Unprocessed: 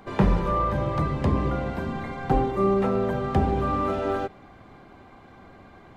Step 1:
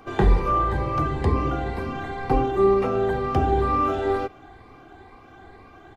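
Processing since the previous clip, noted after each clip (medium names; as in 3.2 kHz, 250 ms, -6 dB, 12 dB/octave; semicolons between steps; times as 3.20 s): drifting ripple filter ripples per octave 0.91, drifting +2.1 Hz, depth 6 dB; comb 2.6 ms, depth 52%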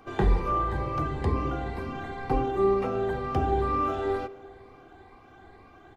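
band-passed feedback delay 165 ms, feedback 65%, band-pass 550 Hz, level -15 dB; trim -5 dB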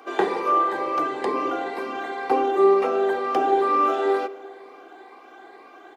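high-pass 320 Hz 24 dB/octave; trim +7.5 dB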